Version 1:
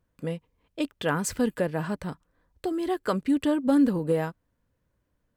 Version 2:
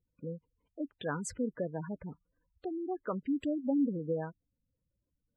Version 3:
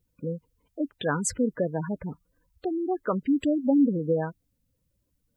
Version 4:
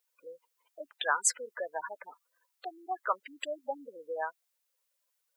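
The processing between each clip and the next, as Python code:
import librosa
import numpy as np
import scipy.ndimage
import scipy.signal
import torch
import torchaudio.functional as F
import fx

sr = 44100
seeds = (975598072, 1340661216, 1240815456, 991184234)

y1 = fx.spec_gate(x, sr, threshold_db=-15, keep='strong')
y1 = F.gain(torch.from_numpy(y1), -8.5).numpy()
y2 = fx.high_shelf(y1, sr, hz=6300.0, db=6.5)
y2 = F.gain(torch.from_numpy(y2), 8.5).numpy()
y3 = scipy.signal.sosfilt(scipy.signal.butter(4, 750.0, 'highpass', fs=sr, output='sos'), y2)
y3 = F.gain(torch.from_numpy(y3), 2.5).numpy()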